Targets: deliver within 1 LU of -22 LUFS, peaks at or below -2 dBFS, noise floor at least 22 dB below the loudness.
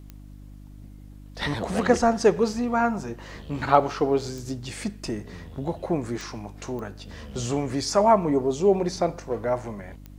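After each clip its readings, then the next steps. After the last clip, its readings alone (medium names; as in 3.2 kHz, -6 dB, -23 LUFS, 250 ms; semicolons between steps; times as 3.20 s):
clicks found 5; hum 50 Hz; highest harmonic 300 Hz; hum level -41 dBFS; loudness -25.0 LUFS; peak level -3.5 dBFS; loudness target -22.0 LUFS
-> de-click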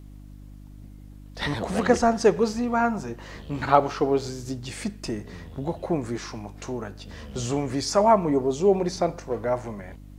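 clicks found 0; hum 50 Hz; highest harmonic 300 Hz; hum level -41 dBFS
-> de-hum 50 Hz, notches 6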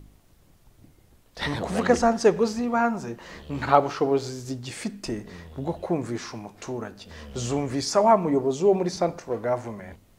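hum not found; loudness -25.0 LUFS; peak level -3.5 dBFS; loudness target -22.0 LUFS
-> trim +3 dB; peak limiter -2 dBFS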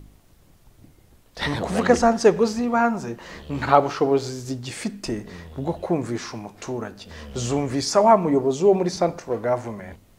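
loudness -22.0 LUFS; peak level -2.0 dBFS; noise floor -55 dBFS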